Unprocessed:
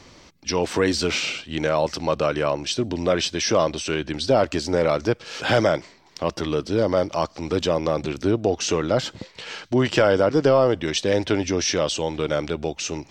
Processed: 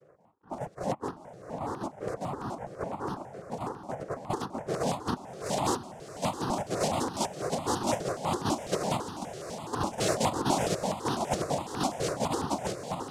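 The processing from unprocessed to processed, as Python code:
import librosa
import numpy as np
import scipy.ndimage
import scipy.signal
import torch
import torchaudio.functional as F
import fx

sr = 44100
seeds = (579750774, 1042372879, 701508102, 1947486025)

p1 = fx.rattle_buzz(x, sr, strikes_db=-30.0, level_db=-11.0)
p2 = p1 + 0.72 * np.pad(p1, (int(7.0 * sr / 1000.0), 0))[:len(p1)]
p3 = fx.chopper(p2, sr, hz=5.0, depth_pct=65, duty_pct=70)
p4 = fx.quant_dither(p3, sr, seeds[0], bits=6, dither='none')
p5 = p3 + F.gain(torch.from_numpy(p4), -10.5).numpy()
p6 = np.clip(p5, -10.0 ** (-10.5 / 20.0), 10.0 ** (-10.5 / 20.0))
p7 = fx.filter_sweep_lowpass(p6, sr, from_hz=210.0, to_hz=860.0, start_s=3.94, end_s=6.07, q=0.95)
p8 = fx.tube_stage(p7, sr, drive_db=22.0, bias=0.7)
p9 = fx.noise_vocoder(p8, sr, seeds[1], bands=2)
p10 = fx.echo_diffused(p9, sr, ms=695, feedback_pct=64, wet_db=-11.0)
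y = fx.phaser_held(p10, sr, hz=12.0, low_hz=250.0, high_hz=2200.0)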